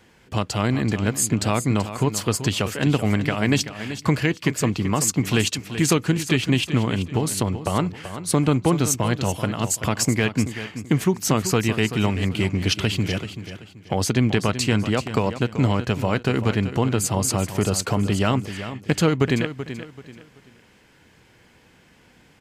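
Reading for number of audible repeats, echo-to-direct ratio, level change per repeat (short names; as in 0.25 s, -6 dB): 3, -11.0 dB, -10.5 dB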